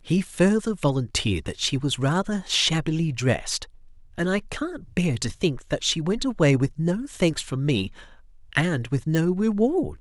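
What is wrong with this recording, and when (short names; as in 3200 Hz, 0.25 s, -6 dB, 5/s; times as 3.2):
9.15 pop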